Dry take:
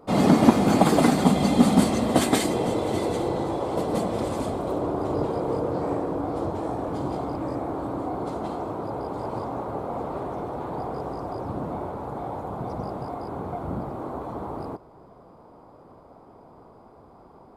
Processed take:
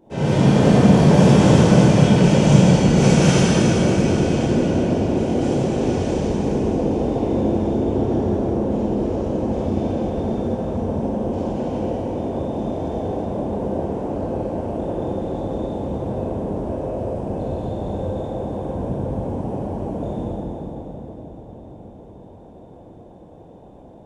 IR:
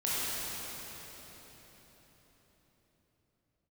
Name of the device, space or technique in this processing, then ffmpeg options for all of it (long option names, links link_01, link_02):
slowed and reverbed: -filter_complex "[0:a]asetrate=32193,aresample=44100[link_01];[1:a]atrim=start_sample=2205[link_02];[link_01][link_02]afir=irnorm=-1:irlink=0,volume=-3.5dB"